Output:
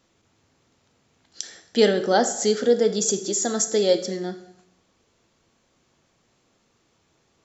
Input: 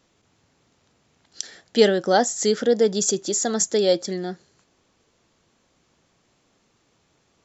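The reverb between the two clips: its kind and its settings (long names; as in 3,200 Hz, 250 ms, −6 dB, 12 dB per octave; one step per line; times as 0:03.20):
dense smooth reverb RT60 0.77 s, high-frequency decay 0.9×, DRR 8 dB
level −1.5 dB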